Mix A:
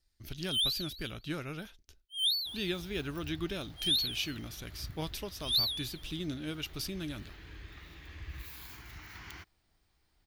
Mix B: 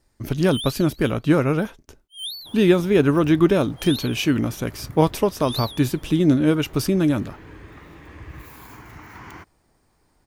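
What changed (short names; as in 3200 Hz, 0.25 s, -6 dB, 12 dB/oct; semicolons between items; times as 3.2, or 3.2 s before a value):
speech +8.5 dB; master: add graphic EQ 125/250/500/1000/2000/4000/8000 Hz +9/+10/+11/+11/+3/-6/+5 dB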